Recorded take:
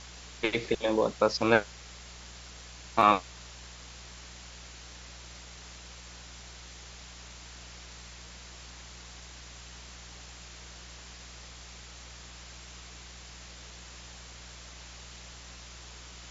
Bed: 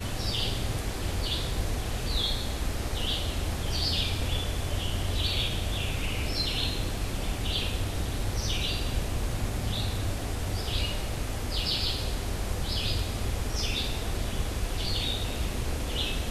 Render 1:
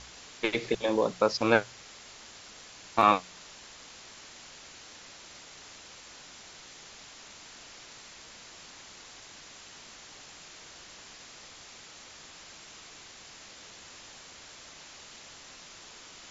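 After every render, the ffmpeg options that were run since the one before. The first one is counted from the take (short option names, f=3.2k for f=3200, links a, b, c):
-af "bandreject=f=60:t=h:w=4,bandreject=f=120:t=h:w=4,bandreject=f=180:t=h:w=4"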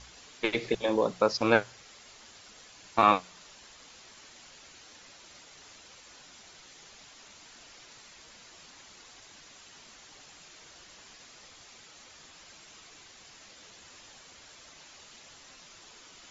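-af "afftdn=nr=6:nf=-50"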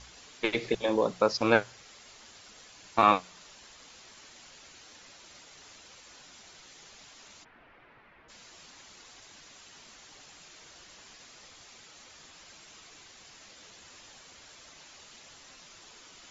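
-filter_complex "[0:a]asplit=3[a][b][c];[a]afade=t=out:st=7.43:d=0.02[d];[b]lowpass=f=2.2k:w=0.5412,lowpass=f=2.2k:w=1.3066,afade=t=in:st=7.43:d=0.02,afade=t=out:st=8.28:d=0.02[e];[c]afade=t=in:st=8.28:d=0.02[f];[d][e][f]amix=inputs=3:normalize=0"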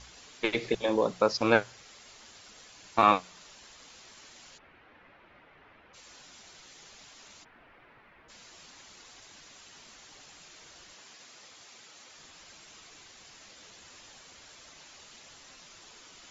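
-filter_complex "[0:a]asplit=3[a][b][c];[a]afade=t=out:st=4.57:d=0.02[d];[b]lowpass=f=2.3k:w=0.5412,lowpass=f=2.3k:w=1.3066,afade=t=in:st=4.57:d=0.02,afade=t=out:st=5.93:d=0.02[e];[c]afade=t=in:st=5.93:d=0.02[f];[d][e][f]amix=inputs=3:normalize=0,asettb=1/sr,asplit=3[g][h][i];[g]atrim=end=10.934[j];[h]atrim=start=10.93:end=12.18,asetpts=PTS-STARTPTS,afade=t=in:d=0.004:c=qsin,afade=t=out:st=1.246:d=0.004:c=qsin,highpass=f=190:p=1[k];[i]atrim=start=12.176[l];[j][k]acrossfade=d=0.004:c1=hsin:c2=qsin[m];[m][l]acrossfade=d=0.004:c1=qsin:c2=hsin"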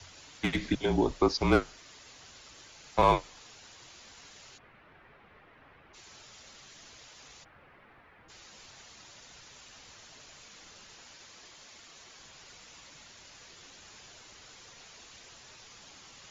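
-filter_complex "[0:a]afreqshift=-150,acrossover=split=210|1100|3300[a][b][c][d];[c]asoftclip=type=tanh:threshold=-30dB[e];[a][b][e][d]amix=inputs=4:normalize=0"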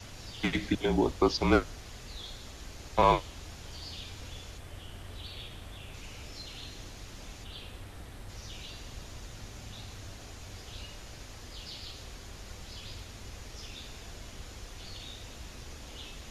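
-filter_complex "[1:a]volume=-15.5dB[a];[0:a][a]amix=inputs=2:normalize=0"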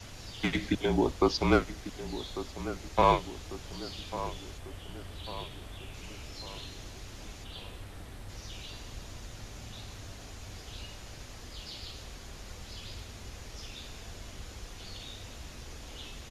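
-filter_complex "[0:a]asplit=2[a][b];[b]adelay=1146,lowpass=f=1.5k:p=1,volume=-12dB,asplit=2[c][d];[d]adelay=1146,lowpass=f=1.5k:p=1,volume=0.53,asplit=2[e][f];[f]adelay=1146,lowpass=f=1.5k:p=1,volume=0.53,asplit=2[g][h];[h]adelay=1146,lowpass=f=1.5k:p=1,volume=0.53,asplit=2[i][j];[j]adelay=1146,lowpass=f=1.5k:p=1,volume=0.53,asplit=2[k][l];[l]adelay=1146,lowpass=f=1.5k:p=1,volume=0.53[m];[a][c][e][g][i][k][m]amix=inputs=7:normalize=0"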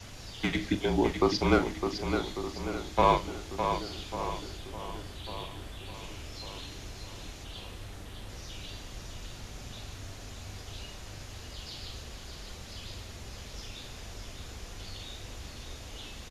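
-filter_complex "[0:a]asplit=2[a][b];[b]adelay=41,volume=-12dB[c];[a][c]amix=inputs=2:normalize=0,aecho=1:1:608|1216|1824|2432|3040:0.447|0.188|0.0788|0.0331|0.0139"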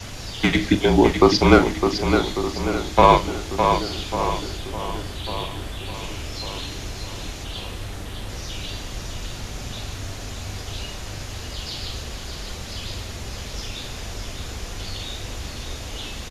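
-af "volume=11dB,alimiter=limit=-1dB:level=0:latency=1"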